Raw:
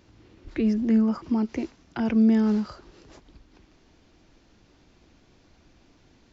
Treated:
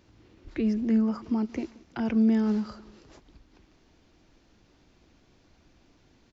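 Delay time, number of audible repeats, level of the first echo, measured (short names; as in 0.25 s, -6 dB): 0.179 s, 2, -22.5 dB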